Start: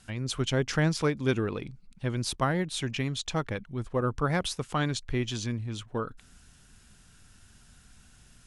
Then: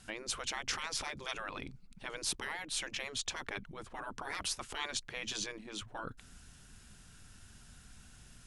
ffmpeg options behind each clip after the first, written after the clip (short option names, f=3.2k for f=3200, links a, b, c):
-af "afftfilt=real='re*lt(hypot(re,im),0.0708)':imag='im*lt(hypot(re,im),0.0708)':win_size=1024:overlap=0.75"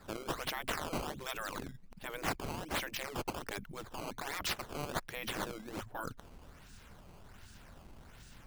-filter_complex "[0:a]acrossover=split=200|1300|3900[a][b][c][d];[c]alimiter=level_in=11.5dB:limit=-24dB:level=0:latency=1,volume=-11.5dB[e];[a][b][e][d]amix=inputs=4:normalize=0,acrusher=samples=14:mix=1:aa=0.000001:lfo=1:lforange=22.4:lforate=1.3,volume=1.5dB"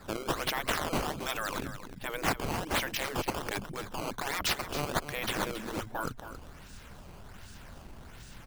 -af "aecho=1:1:273:0.282,volume=6dB"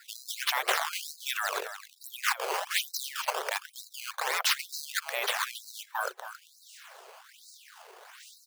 -af "afreqshift=83,afftfilt=real='re*gte(b*sr/1024,360*pow(3900/360,0.5+0.5*sin(2*PI*1.1*pts/sr)))':imag='im*gte(b*sr/1024,360*pow(3900/360,0.5+0.5*sin(2*PI*1.1*pts/sr)))':win_size=1024:overlap=0.75,volume=4dB"